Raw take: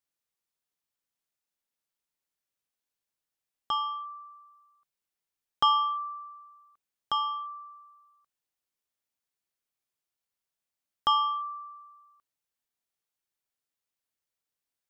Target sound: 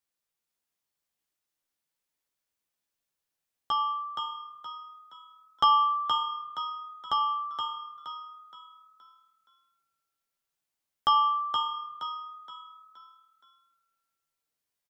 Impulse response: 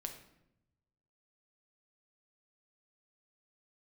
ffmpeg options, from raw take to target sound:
-filter_complex "[0:a]asplit=6[link_01][link_02][link_03][link_04][link_05][link_06];[link_02]adelay=471,afreqshift=38,volume=-5.5dB[link_07];[link_03]adelay=942,afreqshift=76,volume=-13.9dB[link_08];[link_04]adelay=1413,afreqshift=114,volume=-22.3dB[link_09];[link_05]adelay=1884,afreqshift=152,volume=-30.7dB[link_10];[link_06]adelay=2355,afreqshift=190,volume=-39.1dB[link_11];[link_01][link_07][link_08][link_09][link_10][link_11]amix=inputs=6:normalize=0,asplit=2[link_12][link_13];[1:a]atrim=start_sample=2205,adelay=13[link_14];[link_13][link_14]afir=irnorm=-1:irlink=0,volume=-2dB[link_15];[link_12][link_15]amix=inputs=2:normalize=0"

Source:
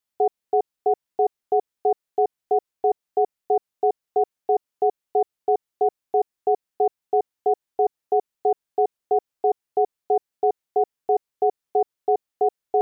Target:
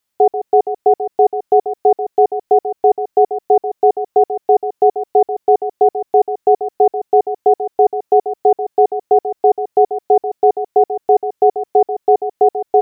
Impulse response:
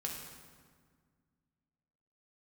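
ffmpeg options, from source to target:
-af "aecho=1:1:138:0.299,volume=9dB"

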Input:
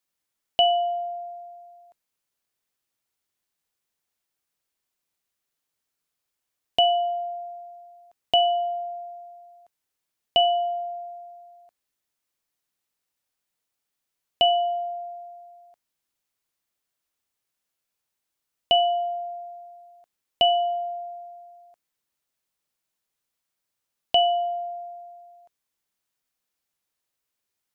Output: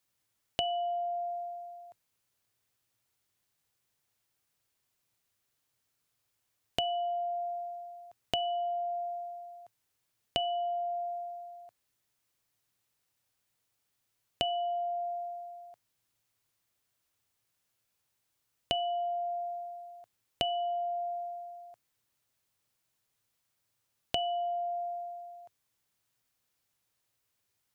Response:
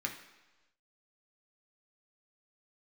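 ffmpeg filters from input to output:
-af "equalizer=frequency=110:width=2.6:gain=12.5,acompressor=threshold=-35dB:ratio=4,volume=2.5dB"

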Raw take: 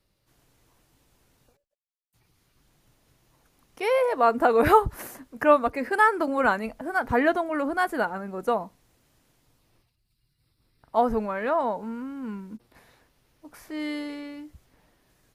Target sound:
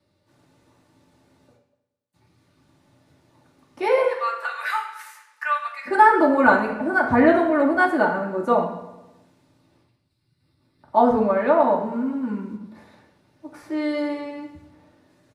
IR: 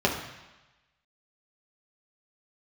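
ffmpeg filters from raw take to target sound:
-filter_complex "[0:a]asplit=3[link_01][link_02][link_03];[link_01]afade=type=out:start_time=4.04:duration=0.02[link_04];[link_02]highpass=frequency=1500:width=0.5412,highpass=frequency=1500:width=1.3066,afade=type=in:start_time=4.04:duration=0.02,afade=type=out:start_time=5.85:duration=0.02[link_05];[link_03]afade=type=in:start_time=5.85:duration=0.02[link_06];[link_04][link_05][link_06]amix=inputs=3:normalize=0,asplit=2[link_07][link_08];[link_08]adelay=106,lowpass=frequency=2700:poles=1,volume=-14dB,asplit=2[link_09][link_10];[link_10]adelay=106,lowpass=frequency=2700:poles=1,volume=0.55,asplit=2[link_11][link_12];[link_12]adelay=106,lowpass=frequency=2700:poles=1,volume=0.55,asplit=2[link_13][link_14];[link_14]adelay=106,lowpass=frequency=2700:poles=1,volume=0.55,asplit=2[link_15][link_16];[link_16]adelay=106,lowpass=frequency=2700:poles=1,volume=0.55,asplit=2[link_17][link_18];[link_18]adelay=106,lowpass=frequency=2700:poles=1,volume=0.55[link_19];[link_07][link_09][link_11][link_13][link_15][link_17][link_19]amix=inputs=7:normalize=0[link_20];[1:a]atrim=start_sample=2205,asetrate=66150,aresample=44100[link_21];[link_20][link_21]afir=irnorm=-1:irlink=0,volume=-7dB"

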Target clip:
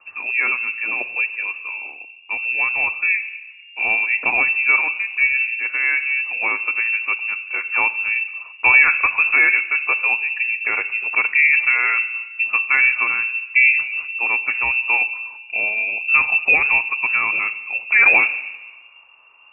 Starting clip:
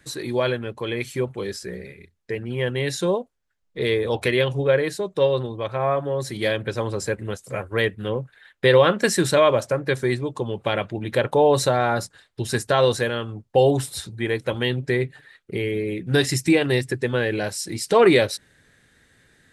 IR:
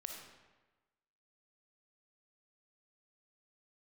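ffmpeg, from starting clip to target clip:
-filter_complex "[0:a]asplit=2[link_01][link_02];[link_02]aemphasis=mode=reproduction:type=bsi[link_03];[1:a]atrim=start_sample=2205,lowshelf=frequency=300:gain=11.5[link_04];[link_03][link_04]afir=irnorm=-1:irlink=0,volume=-8.5dB[link_05];[link_01][link_05]amix=inputs=2:normalize=0,lowpass=frequency=2400:width_type=q:width=0.5098,lowpass=frequency=2400:width_type=q:width=0.6013,lowpass=frequency=2400:width_type=q:width=0.9,lowpass=frequency=2400:width_type=q:width=2.563,afreqshift=-2800"

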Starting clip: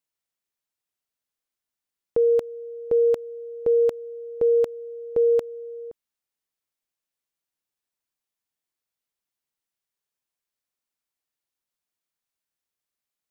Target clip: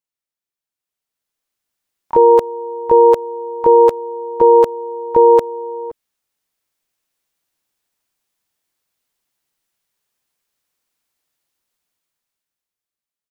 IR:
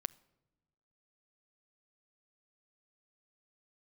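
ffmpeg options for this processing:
-filter_complex "[0:a]dynaudnorm=framelen=120:gausssize=21:maxgain=15dB,asplit=3[link_01][link_02][link_03];[link_02]asetrate=33038,aresample=44100,atempo=1.33484,volume=-13dB[link_04];[link_03]asetrate=88200,aresample=44100,atempo=0.5,volume=-6dB[link_05];[link_01][link_04][link_05]amix=inputs=3:normalize=0,volume=-3.5dB"

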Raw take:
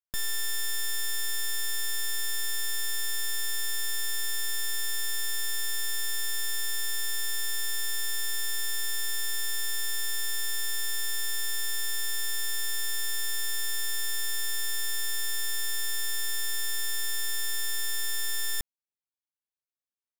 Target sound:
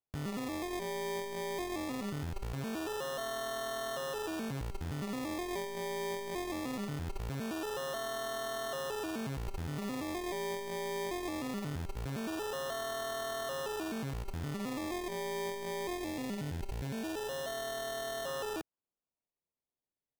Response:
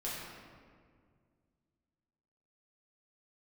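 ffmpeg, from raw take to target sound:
-filter_complex "[0:a]highpass=200,lowpass=2400,acrusher=samples=25:mix=1:aa=0.000001:lfo=1:lforange=15:lforate=0.21,asettb=1/sr,asplit=3[link_01][link_02][link_03];[link_01]atrim=end=15.974[link_04];[link_02]atrim=start=15.97:end=18.27,asetpts=PTS-STARTPTS,afade=type=in:duration=0.004:curve=qsin,afade=type=out:start_time=2.296:duration=0.004:curve=qsin,equalizer=frequency=1200:width=6.2:gain=-13.5[link_05];[link_03]atrim=start=18.266[link_06];[link_04][link_05]acrossfade=duration=0.004:curve1=hsin:curve2=qsin[link_07];[link_07][link_06]acrossfade=duration=0.004:curve1=qsin:curve2=hsin,volume=3.5dB"

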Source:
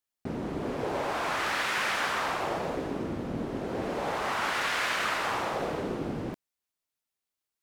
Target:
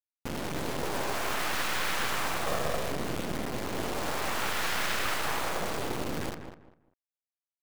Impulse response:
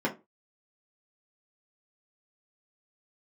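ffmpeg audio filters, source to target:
-filter_complex "[0:a]asettb=1/sr,asplit=3[link_01][link_02][link_03];[link_01]atrim=end=2.464[link_04];[link_02]atrim=start=2.46:end=2.92,asetpts=PTS-STARTPTS,afade=type=in:duration=0.004:curve=qsin,afade=type=out:start_time=0.456:duration=0.004:curve=qsin,aecho=1:1:1.7:0.92,atrim=end_sample=20286[link_05];[link_03]atrim=start=2.916[link_06];[link_04][link_05]acrossfade=duration=0.004:curve1=hsin:curve2=qsin[link_07];[link_07][link_06]acrossfade=duration=0.004:curve1=qsin:curve2=hsin,acrusher=bits=3:dc=4:mix=0:aa=0.000001,asplit=2[link_08][link_09];[link_09]adelay=198,lowpass=frequency=1900:poles=1,volume=-8dB,asplit=2[link_10][link_11];[link_11]adelay=198,lowpass=frequency=1900:poles=1,volume=0.25,asplit=2[link_12][link_13];[link_13]adelay=198,lowpass=frequency=1900:poles=1,volume=0.25[link_14];[link_08][link_10][link_12][link_14]amix=inputs=4:normalize=0,volume=1.5dB"

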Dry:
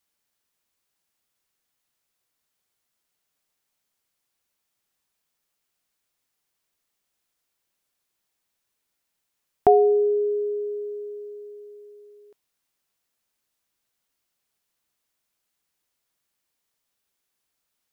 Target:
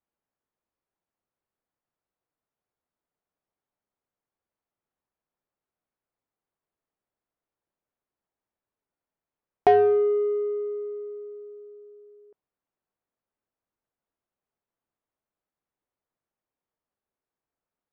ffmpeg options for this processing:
ffmpeg -i in.wav -filter_complex "[0:a]lowshelf=frequency=490:gain=-8.5,asplit=2[link_01][link_02];[link_02]asoftclip=type=tanh:threshold=-20.5dB,volume=-3dB[link_03];[link_01][link_03]amix=inputs=2:normalize=0,adynamicsmooth=sensitivity=1:basefreq=860" out.wav

